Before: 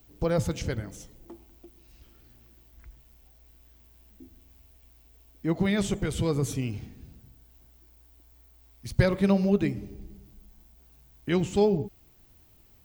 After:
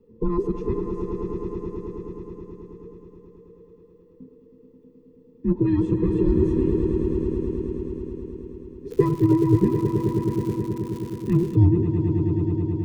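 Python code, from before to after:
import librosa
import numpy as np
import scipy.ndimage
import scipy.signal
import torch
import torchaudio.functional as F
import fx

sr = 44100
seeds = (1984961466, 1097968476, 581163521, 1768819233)

p1 = fx.band_invert(x, sr, width_hz=500)
p2 = scipy.signal.lfilter(np.full(58, 1.0 / 58), 1.0, p1)
p3 = p2 + fx.echo_swell(p2, sr, ms=107, loudest=5, wet_db=-9.5, dry=0)
p4 = fx.dmg_crackle(p3, sr, seeds[0], per_s=230.0, level_db=-40.0, at=(8.9, 11.54), fade=0.02)
y = p4 * 10.0 ** (7.0 / 20.0)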